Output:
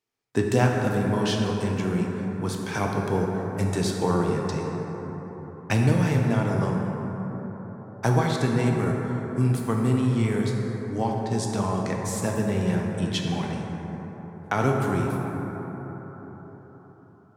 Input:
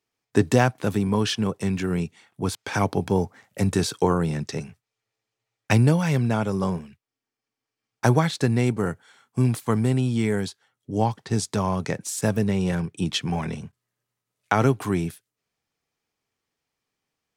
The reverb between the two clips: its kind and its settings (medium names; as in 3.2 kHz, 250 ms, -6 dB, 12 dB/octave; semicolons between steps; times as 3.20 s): plate-style reverb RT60 4.8 s, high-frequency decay 0.3×, DRR -0.5 dB; trim -4.5 dB